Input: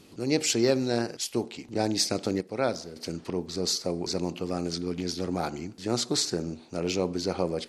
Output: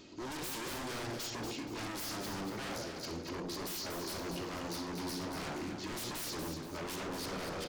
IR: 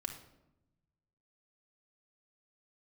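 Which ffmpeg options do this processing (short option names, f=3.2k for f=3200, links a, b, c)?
-filter_complex "[1:a]atrim=start_sample=2205,afade=t=out:st=0.22:d=0.01,atrim=end_sample=10143,asetrate=48510,aresample=44100[a];[0:a][a]afir=irnorm=-1:irlink=0,aresample=16000,asoftclip=type=tanh:threshold=-29dB,aresample=44100,bass=f=250:g=-5,treble=f=4k:g=0,areverse,acompressor=mode=upward:threshold=-41dB:ratio=2.5,areverse,aeval=exprs='0.0141*(abs(mod(val(0)/0.0141+3,4)-2)-1)':c=same,aecho=1:1:237|474|711|948:0.473|0.156|0.0515|0.017,volume=1dB"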